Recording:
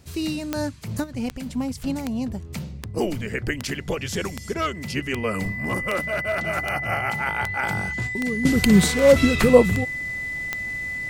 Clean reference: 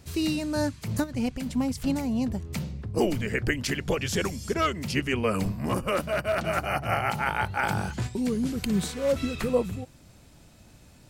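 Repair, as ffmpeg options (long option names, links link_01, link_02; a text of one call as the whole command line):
ffmpeg -i in.wav -af "adeclick=threshold=4,bandreject=frequency=2000:width=30,asetnsamples=nb_out_samples=441:pad=0,asendcmd='8.45 volume volume -11dB',volume=0dB" out.wav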